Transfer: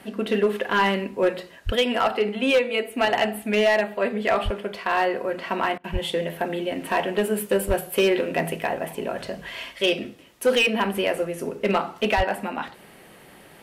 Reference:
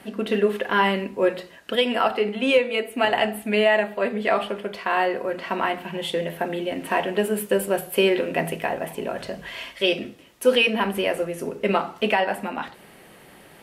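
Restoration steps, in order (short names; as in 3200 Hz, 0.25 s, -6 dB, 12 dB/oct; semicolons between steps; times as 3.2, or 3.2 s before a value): clip repair -13.5 dBFS; de-plosive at 1.65/4.44/5.92/7.67/12.16; interpolate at 5.78, 59 ms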